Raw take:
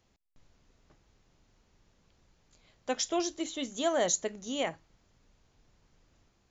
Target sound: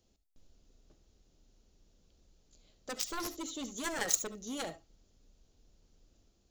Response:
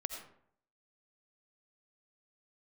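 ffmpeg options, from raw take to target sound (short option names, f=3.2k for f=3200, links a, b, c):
-filter_complex "[0:a]equalizer=f=125:t=o:w=1:g=-7,equalizer=f=1k:t=o:w=1:g=-10,equalizer=f=2k:t=o:w=1:g=-11,acrusher=bits=9:mode=log:mix=0:aa=0.000001,aeval=exprs='0.158*(cos(1*acos(clip(val(0)/0.158,-1,1)))-cos(1*PI/2))+0.0447*(cos(7*acos(clip(val(0)/0.158,-1,1)))-cos(7*PI/2))':c=same[a];[1:a]atrim=start_sample=2205,atrim=end_sample=3528[b];[a][b]afir=irnorm=-1:irlink=0,volume=2.5dB"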